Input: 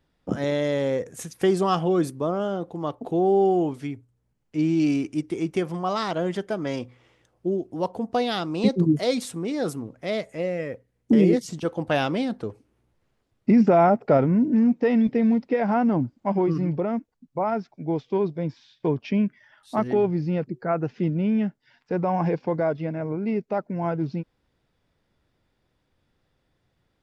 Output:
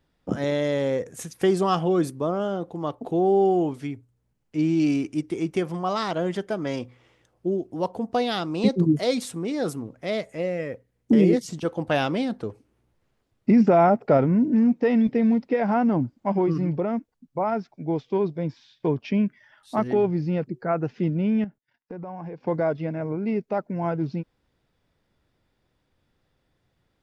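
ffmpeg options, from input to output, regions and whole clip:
-filter_complex "[0:a]asettb=1/sr,asplit=3[a][b][c];[a]atrim=end=21.444[d];[b]atrim=start=21.44:end=22.47,asetpts=PTS-STARTPTS,afade=t=in:d=0.004:c=qsin,afade=t=out:st=1.026:d=0.004:c=qsin,agate=range=-25dB:threshold=-58dB:ratio=16:release=100:detection=peak,equalizer=f=5.1k:t=o:w=2.1:g=-6.5,acompressor=threshold=-34dB:ratio=5:attack=3.2:release=140:knee=1:detection=peak[e];[c]atrim=start=22.466[f];[d][e]acrossfade=d=0.004:c1=hsin:c2=qsin[g];[g][f]acrossfade=d=0.004:c1=qsin:c2=hsin"

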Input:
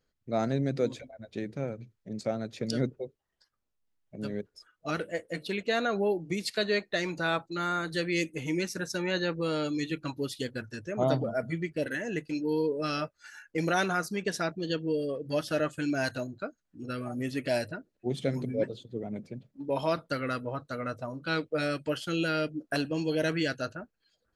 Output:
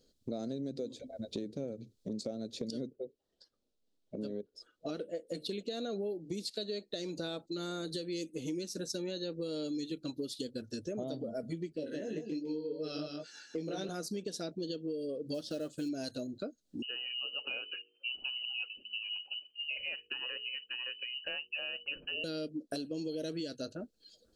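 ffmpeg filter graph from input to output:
-filter_complex "[0:a]asettb=1/sr,asplit=3[a][b][c];[a]atrim=end=2.934[d];[b]atrim=start=2.93:end=5.27,asetpts=PTS-STARTPTS,afade=t=in:d=0.004:c=qsin,afade=t=out:st=2.336:d=0.004:c=qsin,lowpass=f=2k:p=1,lowshelf=f=270:g=-7[e];[c]atrim=start=5.266[f];[d][e]acrossfade=d=0.004:c1=hsin:c2=qsin[g];[g][f]acrossfade=d=0.004:c1=qsin:c2=hsin,asettb=1/sr,asplit=3[h][i][j];[h]atrim=end=11.764[k];[i]atrim=start=11.76:end=13.89,asetpts=PTS-STARTPTS,afade=t=in:d=0.004:c=qsin,afade=t=out:st=2.126:d=0.004:c=qsin,flanger=delay=18.5:depth=2.4:speed=2.7,highpass=110,lowpass=5k,aecho=1:1:157:0.473,atrim=end_sample=93933[l];[j]atrim=start=13.886[m];[k][l]acrossfade=d=0.004:c1=hsin:c2=qsin[n];[n][m]acrossfade=d=0.004:c1=qsin:c2=hsin,asettb=1/sr,asplit=3[o][p][q];[o]atrim=end=15.344[r];[p]atrim=start=15.34:end=15.89,asetpts=PTS-STARTPTS,afade=t=in:d=0.004:c=qsin,afade=t=out:st=0.546:d=0.004:c=qsin,acrossover=split=7100[s][t];[t]acompressor=threshold=-59dB:ratio=4:attack=1:release=60[u];[s][u]amix=inputs=2:normalize=0,acrusher=bits=6:mode=log:mix=0:aa=0.000001[v];[q]atrim=start=15.886[w];[r][v]acrossfade=d=0.004:c1=hsin:c2=qsin[x];[x][w]acrossfade=d=0.004:c1=qsin:c2=hsin,asettb=1/sr,asplit=3[y][z][aa];[y]atrim=end=16.824[ab];[z]atrim=start=16.82:end=22.24,asetpts=PTS-STARTPTS,afade=t=in:d=0.004:c=qsin,afade=t=out:st=5.416:d=0.004:c=qsin,lowpass=f=2.6k:t=q:w=0.5098,lowpass=f=2.6k:t=q:w=0.6013,lowpass=f=2.6k:t=q:w=0.9,lowpass=f=2.6k:t=q:w=2.563,afreqshift=-3100,bandreject=f=52.76:t=h:w=4,bandreject=f=105.52:t=h:w=4,bandreject=f=158.28:t=h:w=4,bandreject=f=211.04:t=h:w=4,bandreject=f=263.8:t=h:w=4,bandreject=f=316.56:t=h:w=4,bandreject=f=369.32:t=h:w=4,bandreject=f=422.08:t=h:w=4,bandreject=f=474.84:t=h:w=4[ac];[aa]atrim=start=22.236[ad];[ab][ac]acrossfade=d=0.004:c1=hsin:c2=qsin[ae];[ae][ad]acrossfade=d=0.004:c1=qsin:c2=hsin,equalizer=f=125:t=o:w=1:g=-4,equalizer=f=250:t=o:w=1:g=7,equalizer=f=500:t=o:w=1:g=7,equalizer=f=1k:t=o:w=1:g=-9,equalizer=f=2k:t=o:w=1:g=-12,equalizer=f=4k:t=o:w=1:g=10,equalizer=f=8k:t=o:w=1:g=5,alimiter=limit=-18.5dB:level=0:latency=1:release=389,acompressor=threshold=-44dB:ratio=4,volume=5.5dB"

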